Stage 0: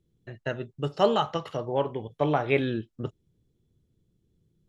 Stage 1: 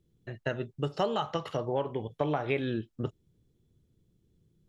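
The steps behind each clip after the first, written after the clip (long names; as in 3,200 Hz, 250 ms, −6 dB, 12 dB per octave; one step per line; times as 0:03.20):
downward compressor 5 to 1, threshold −27 dBFS, peak gain reduction 11 dB
level +1 dB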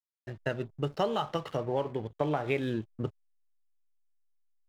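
slack as between gear wheels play −44.5 dBFS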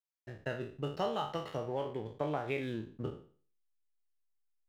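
peak hold with a decay on every bin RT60 0.44 s
level −6.5 dB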